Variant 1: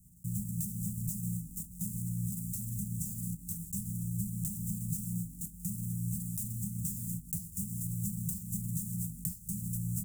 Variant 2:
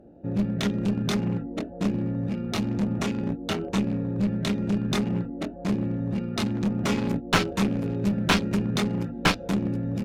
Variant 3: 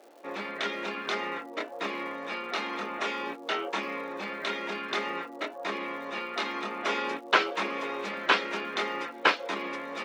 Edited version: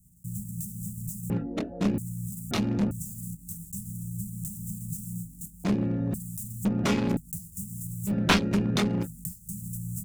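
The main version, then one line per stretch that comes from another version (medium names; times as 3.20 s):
1
1.30–1.98 s: from 2
2.51–2.91 s: from 2
5.64–6.14 s: from 2
6.65–7.17 s: from 2
8.09–9.05 s: from 2, crossfade 0.06 s
not used: 3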